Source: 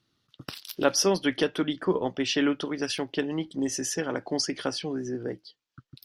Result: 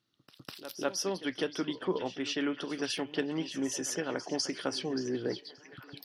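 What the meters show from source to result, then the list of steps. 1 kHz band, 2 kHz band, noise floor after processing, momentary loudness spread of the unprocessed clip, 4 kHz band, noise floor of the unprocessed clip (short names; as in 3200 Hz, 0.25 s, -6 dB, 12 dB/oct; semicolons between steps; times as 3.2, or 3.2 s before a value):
-6.5 dB, -5.5 dB, -64 dBFS, 13 LU, -5.5 dB, -78 dBFS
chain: low shelf 80 Hz -11 dB; pre-echo 0.201 s -15 dB; vocal rider 0.5 s; on a send: delay with a stepping band-pass 0.578 s, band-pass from 3700 Hz, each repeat -0.7 oct, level -8 dB; on the sum: gain -5.5 dB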